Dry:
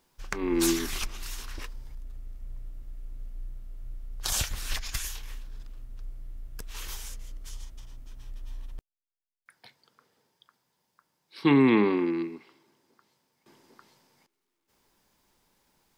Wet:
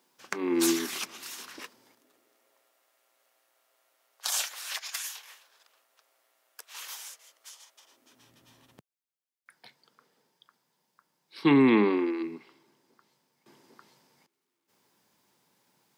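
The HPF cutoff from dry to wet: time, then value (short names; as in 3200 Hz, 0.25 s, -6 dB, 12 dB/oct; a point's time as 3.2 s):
HPF 24 dB/oct
1.66 s 200 Hz
2.78 s 590 Hz
7.72 s 590 Hz
8.33 s 140 Hz
11.72 s 140 Hz
12.19 s 360 Hz
12.35 s 110 Hz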